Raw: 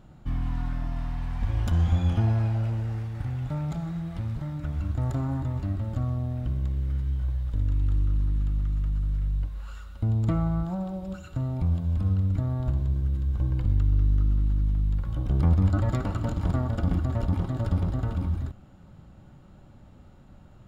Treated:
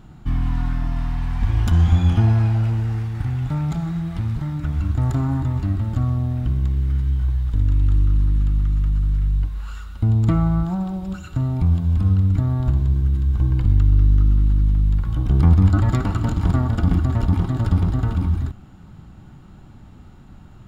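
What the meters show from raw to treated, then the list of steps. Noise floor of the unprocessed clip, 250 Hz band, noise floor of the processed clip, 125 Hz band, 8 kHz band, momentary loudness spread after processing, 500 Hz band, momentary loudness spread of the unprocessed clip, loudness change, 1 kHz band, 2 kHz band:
-51 dBFS, +7.5 dB, -44 dBFS, +7.5 dB, no reading, 9 LU, +3.0 dB, 9 LU, +7.5 dB, +6.5 dB, +7.5 dB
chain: peaking EQ 560 Hz -10.5 dB 0.38 oct; trim +7.5 dB

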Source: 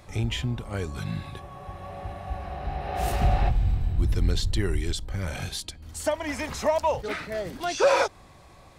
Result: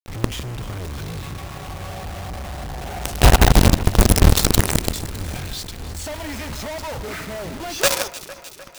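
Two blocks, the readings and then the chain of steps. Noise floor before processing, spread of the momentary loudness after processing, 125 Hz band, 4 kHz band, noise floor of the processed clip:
-51 dBFS, 18 LU, +7.5 dB, +9.5 dB, -40 dBFS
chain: tone controls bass +6 dB, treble +14 dB; level-controlled noise filter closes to 1.4 kHz, open at -13.5 dBFS; companded quantiser 2-bit; on a send: echo whose repeats swap between lows and highs 152 ms, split 2.4 kHz, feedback 78%, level -13.5 dB; on the sum: trim -4 dB

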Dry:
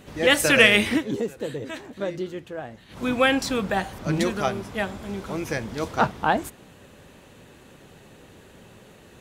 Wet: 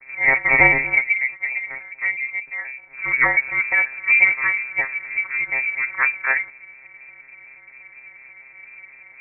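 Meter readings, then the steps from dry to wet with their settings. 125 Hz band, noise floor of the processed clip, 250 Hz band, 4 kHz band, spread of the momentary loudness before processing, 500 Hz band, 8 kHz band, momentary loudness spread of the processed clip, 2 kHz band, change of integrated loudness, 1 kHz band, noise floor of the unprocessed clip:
no reading, -47 dBFS, -13.0 dB, under -40 dB, 18 LU, -9.0 dB, under -40 dB, 14 LU, +8.5 dB, +5.0 dB, -1.5 dB, -51 dBFS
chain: vocoder on a broken chord bare fifth, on C3, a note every 120 ms; frequency inversion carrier 2.5 kHz; trim +4.5 dB

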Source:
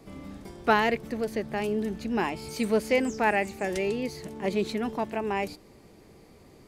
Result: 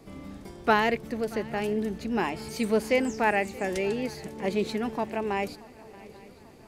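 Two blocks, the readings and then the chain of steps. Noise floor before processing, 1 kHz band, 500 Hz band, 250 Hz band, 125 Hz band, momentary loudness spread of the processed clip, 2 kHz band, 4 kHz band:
-54 dBFS, 0.0 dB, 0.0 dB, 0.0 dB, 0.0 dB, 19 LU, 0.0 dB, 0.0 dB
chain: shuffle delay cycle 839 ms, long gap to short 3:1, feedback 51%, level -21.5 dB

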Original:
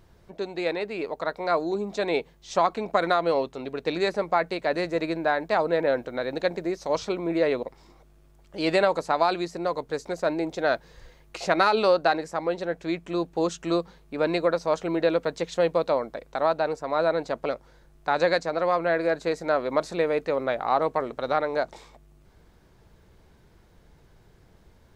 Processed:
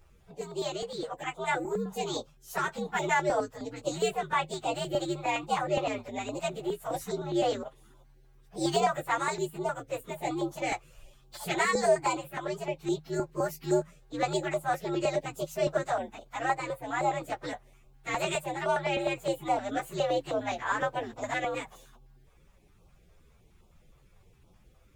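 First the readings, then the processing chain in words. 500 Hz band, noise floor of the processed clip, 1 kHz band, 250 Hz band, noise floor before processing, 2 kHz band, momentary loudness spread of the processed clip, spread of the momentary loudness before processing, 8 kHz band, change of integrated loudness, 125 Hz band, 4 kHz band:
-7.0 dB, -60 dBFS, -4.0 dB, -5.5 dB, -57 dBFS, -3.5 dB, 9 LU, 8 LU, +5.5 dB, -5.0 dB, -0.5 dB, -3.0 dB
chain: frequency axis rescaled in octaves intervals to 122%; step-sequenced notch 9.7 Hz 230–1800 Hz

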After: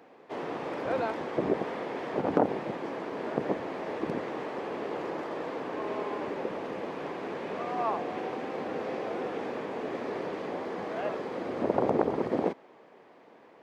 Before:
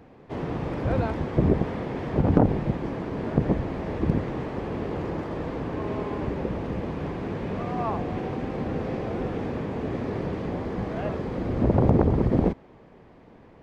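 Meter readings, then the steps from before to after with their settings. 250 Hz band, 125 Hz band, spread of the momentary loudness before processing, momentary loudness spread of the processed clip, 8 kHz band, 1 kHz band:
-8.0 dB, -18.5 dB, 10 LU, 8 LU, no reading, 0.0 dB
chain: high-pass 400 Hz 12 dB/octave

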